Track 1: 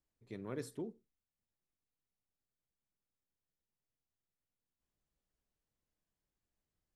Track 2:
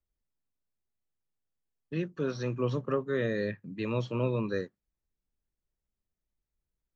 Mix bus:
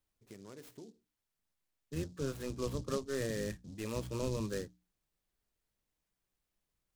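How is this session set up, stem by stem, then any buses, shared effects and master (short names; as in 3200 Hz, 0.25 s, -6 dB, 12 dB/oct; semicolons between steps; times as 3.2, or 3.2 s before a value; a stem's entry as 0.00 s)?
+0.5 dB, 0.00 s, no send, high shelf 3100 Hz +7.5 dB; compressor 4:1, threshold -49 dBFS, peak gain reduction 11.5 dB
-6.5 dB, 0.00 s, no send, octaver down 1 oct, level -3 dB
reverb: off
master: notches 60/120/180/240/300 Hz; noise-modulated delay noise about 5100 Hz, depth 0.059 ms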